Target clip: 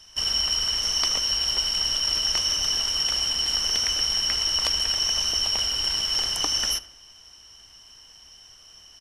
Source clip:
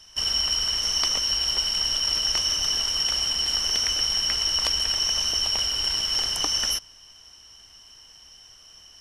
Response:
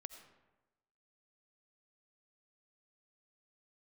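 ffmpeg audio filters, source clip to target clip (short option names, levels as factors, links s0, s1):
-filter_complex "[0:a]asplit=2[s0][s1];[s1]adelay=78,lowpass=f=2800:p=1,volume=0.158,asplit=2[s2][s3];[s3]adelay=78,lowpass=f=2800:p=1,volume=0.51,asplit=2[s4][s5];[s5]adelay=78,lowpass=f=2800:p=1,volume=0.51,asplit=2[s6][s7];[s7]adelay=78,lowpass=f=2800:p=1,volume=0.51,asplit=2[s8][s9];[s9]adelay=78,lowpass=f=2800:p=1,volume=0.51[s10];[s0][s2][s4][s6][s8][s10]amix=inputs=6:normalize=0"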